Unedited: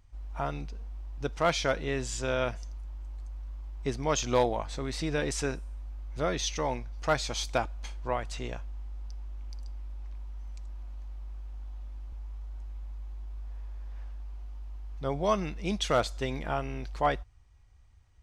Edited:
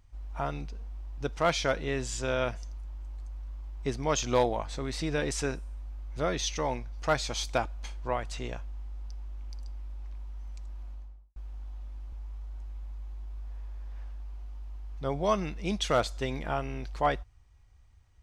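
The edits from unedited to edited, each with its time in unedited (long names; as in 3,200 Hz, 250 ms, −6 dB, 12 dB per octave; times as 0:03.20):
0:10.86–0:11.36: fade out and dull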